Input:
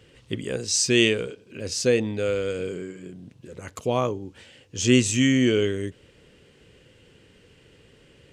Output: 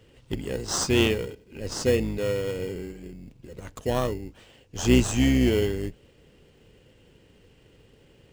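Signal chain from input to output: octaver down 2 oct, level -4 dB; in parallel at -4.5 dB: sample-rate reducer 2400 Hz, jitter 0%; on the sum: gain -5.5 dB

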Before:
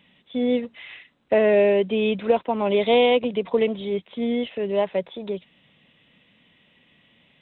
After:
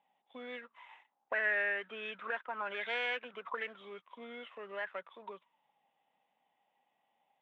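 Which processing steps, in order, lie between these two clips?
high shelf 2600 Hz +6 dB; sample leveller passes 1; auto-wah 800–1700 Hz, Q 15, up, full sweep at -13.5 dBFS; gain +6 dB

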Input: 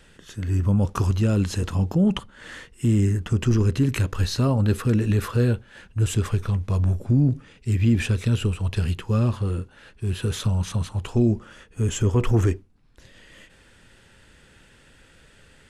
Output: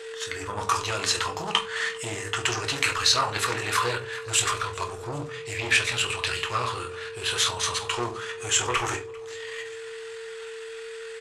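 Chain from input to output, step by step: soft clip -17 dBFS, distortion -15 dB; graphic EQ 250/500/1000/2000/4000/8000 Hz -9/-9/+9/+8/+9/+10 dB; whine 450 Hz -40 dBFS; doubler 35 ms -12 dB; feedback echo 0.555 s, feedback 55%, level -23 dB; shoebox room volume 53 m³, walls mixed, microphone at 0.54 m; tempo 1.4×; HPF 130 Hz 6 dB/oct; resonant low shelf 290 Hz -10.5 dB, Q 1.5; Doppler distortion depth 0.19 ms

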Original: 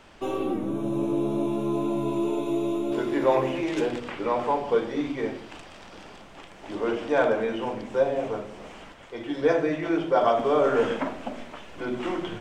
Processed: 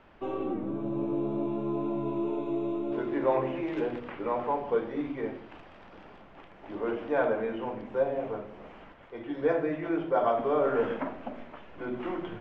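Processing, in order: LPF 2200 Hz 12 dB/oct; gain -4.5 dB

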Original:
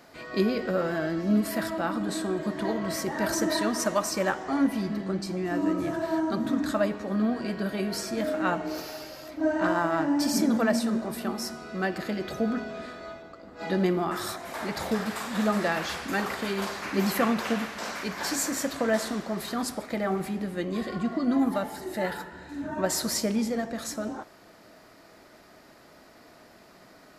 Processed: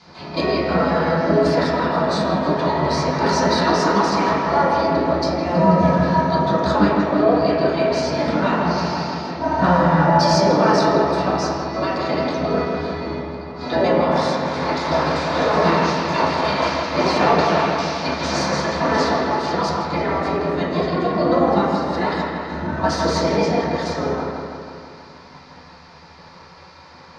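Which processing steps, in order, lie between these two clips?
spectral gate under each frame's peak -10 dB weak; LPF 6400 Hz 24 dB/oct; soft clip -22 dBFS, distortion -25 dB; dark delay 0.162 s, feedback 64%, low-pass 3200 Hz, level -4 dB; reverb RT60 0.55 s, pre-delay 3 ms, DRR -11 dB

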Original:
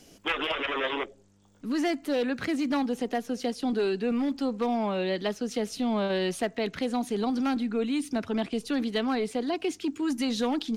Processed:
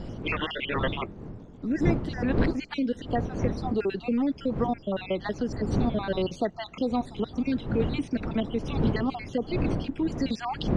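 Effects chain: random spectral dropouts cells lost 49%; wind noise 260 Hz -34 dBFS; in parallel at +1 dB: compressor, threshold -37 dBFS, peak gain reduction 17 dB; on the sum: air absorption 130 m

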